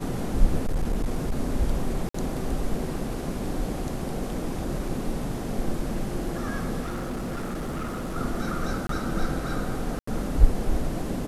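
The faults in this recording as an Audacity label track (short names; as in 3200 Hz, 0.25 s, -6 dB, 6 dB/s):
0.610000	1.330000	clipped -20.5 dBFS
2.090000	2.140000	gap 54 ms
6.810000	8.160000	clipped -27.5 dBFS
8.870000	8.890000	gap 23 ms
9.990000	10.070000	gap 84 ms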